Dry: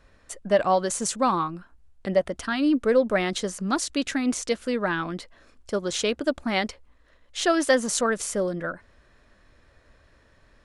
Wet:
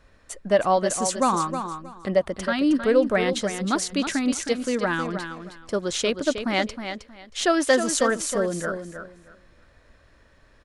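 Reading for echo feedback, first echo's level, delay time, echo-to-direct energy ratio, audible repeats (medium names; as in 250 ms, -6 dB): 21%, -8.5 dB, 315 ms, -8.5 dB, 2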